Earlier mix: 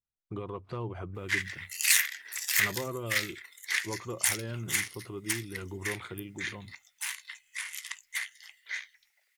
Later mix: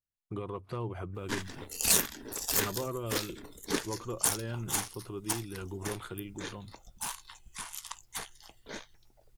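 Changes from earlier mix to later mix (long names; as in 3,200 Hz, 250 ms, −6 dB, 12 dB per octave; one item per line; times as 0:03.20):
speech: remove low-pass filter 6,500 Hz
background: remove high-pass with resonance 2,000 Hz, resonance Q 6.7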